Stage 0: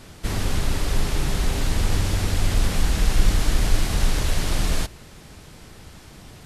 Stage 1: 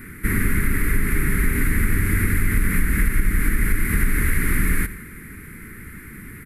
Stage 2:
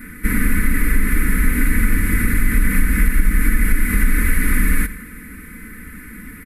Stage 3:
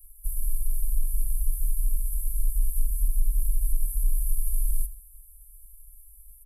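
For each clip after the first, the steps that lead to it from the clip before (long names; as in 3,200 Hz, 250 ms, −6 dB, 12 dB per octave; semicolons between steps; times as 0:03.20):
repeating echo 87 ms, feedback 57%, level −18.5 dB; downward compressor 5 to 1, threshold −18 dBFS, peak gain reduction 9 dB; drawn EQ curve 140 Hz 0 dB, 230 Hz +6 dB, 430 Hz −2 dB, 670 Hz −27 dB, 1,400 Hz +5 dB, 2,100 Hz +11 dB, 3,000 Hz −15 dB, 6,000 Hz −20 dB, 11,000 Hz +9 dB; level +4 dB
comb filter 4 ms, depth 88%
inverse Chebyshev band-stop filter 140–3,000 Hz, stop band 60 dB; level −7 dB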